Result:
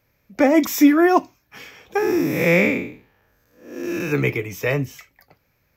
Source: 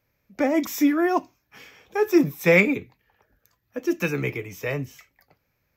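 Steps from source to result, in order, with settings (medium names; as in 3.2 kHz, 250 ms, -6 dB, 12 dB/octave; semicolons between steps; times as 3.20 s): 1.98–4.12 s: spectral blur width 244 ms; trim +6.5 dB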